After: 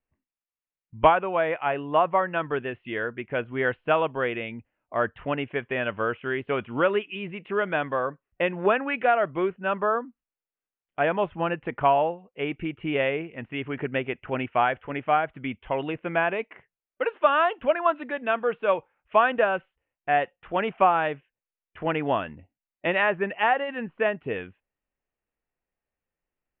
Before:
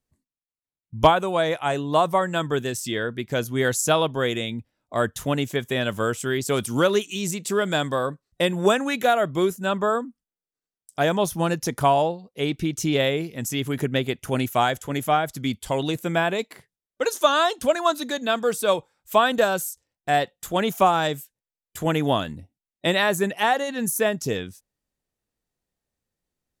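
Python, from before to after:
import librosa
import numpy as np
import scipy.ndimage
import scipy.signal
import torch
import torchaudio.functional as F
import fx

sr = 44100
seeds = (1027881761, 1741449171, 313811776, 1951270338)

y = scipy.signal.sosfilt(scipy.signal.butter(12, 2900.0, 'lowpass', fs=sr, output='sos'), x)
y = fx.peak_eq(y, sr, hz=130.0, db=-9.0, octaves=2.8)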